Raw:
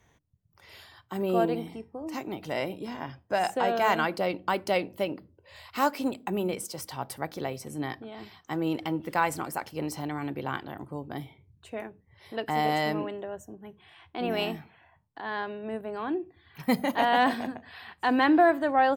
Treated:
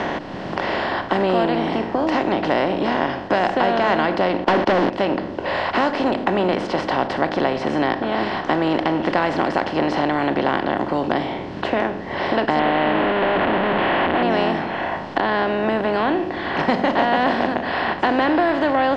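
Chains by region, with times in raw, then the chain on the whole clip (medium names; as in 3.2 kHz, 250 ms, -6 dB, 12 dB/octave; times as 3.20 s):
4.44–4.90 s: low-pass that closes with the level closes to 350 Hz, closed at -21.5 dBFS + waveshaping leveller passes 5 + gate -32 dBFS, range -29 dB
12.59–14.23 s: one-bit delta coder 16 kbps, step -25.5 dBFS + bass shelf 91 Hz -10.5 dB
whole clip: spectral levelling over time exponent 0.4; low-pass 4.8 kHz 24 dB/octave; three bands compressed up and down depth 70%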